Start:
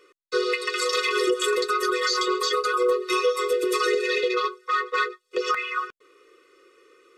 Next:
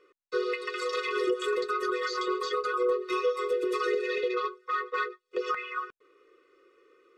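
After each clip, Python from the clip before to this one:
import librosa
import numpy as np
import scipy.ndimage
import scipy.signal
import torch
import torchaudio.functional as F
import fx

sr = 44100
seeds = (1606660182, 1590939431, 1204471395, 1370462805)

y = fx.lowpass(x, sr, hz=1900.0, slope=6)
y = y * 10.0 ** (-4.5 / 20.0)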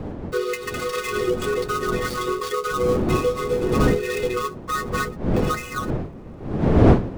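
y = fx.dead_time(x, sr, dead_ms=0.081)
y = fx.dmg_wind(y, sr, seeds[0], corner_hz=310.0, level_db=-29.0)
y = y * 10.0 ** (5.0 / 20.0)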